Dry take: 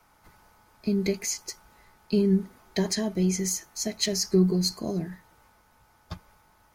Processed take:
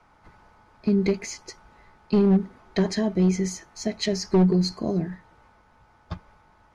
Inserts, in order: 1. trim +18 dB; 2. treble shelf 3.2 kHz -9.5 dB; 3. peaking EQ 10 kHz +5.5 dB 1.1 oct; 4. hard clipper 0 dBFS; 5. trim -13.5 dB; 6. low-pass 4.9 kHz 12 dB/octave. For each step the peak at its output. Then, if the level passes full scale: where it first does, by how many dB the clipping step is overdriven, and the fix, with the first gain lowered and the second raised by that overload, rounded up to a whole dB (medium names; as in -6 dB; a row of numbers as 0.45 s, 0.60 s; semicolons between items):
+6.5 dBFS, +6.5 dBFS, +6.5 dBFS, 0.0 dBFS, -13.5 dBFS, -13.5 dBFS; step 1, 6.5 dB; step 1 +11 dB, step 5 -6.5 dB